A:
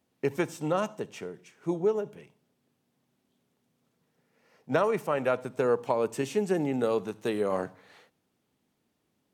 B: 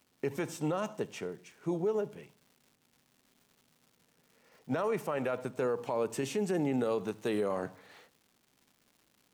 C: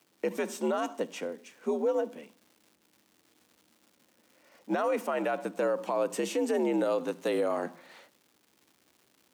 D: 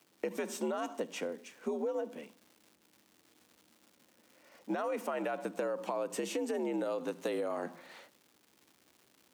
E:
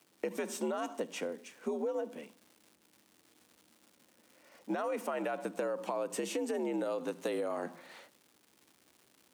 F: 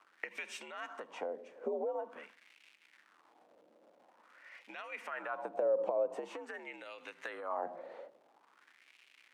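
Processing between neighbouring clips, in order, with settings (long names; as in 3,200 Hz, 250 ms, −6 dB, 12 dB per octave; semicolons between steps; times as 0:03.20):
brickwall limiter −23 dBFS, peak gain reduction 11 dB; surface crackle 310 per second −53 dBFS
frequency shifter +68 Hz; level +3 dB
downward compressor 5 to 1, threshold −32 dBFS, peak gain reduction 8 dB
parametric band 9,400 Hz +3 dB 0.44 octaves
downward compressor 4 to 1, threshold −39 dBFS, peak gain reduction 8 dB; LFO wah 0.47 Hz 530–2,500 Hz, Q 3.3; level +13 dB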